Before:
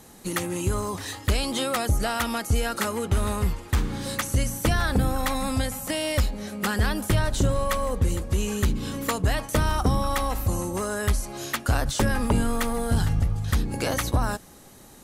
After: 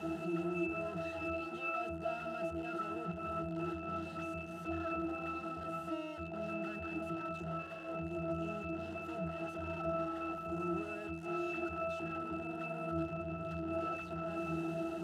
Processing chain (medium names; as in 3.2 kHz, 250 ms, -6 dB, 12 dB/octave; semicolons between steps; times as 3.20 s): one-bit comparator; Bessel high-pass 350 Hz, order 2; pitch-class resonator E, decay 0.6 s; trim +12 dB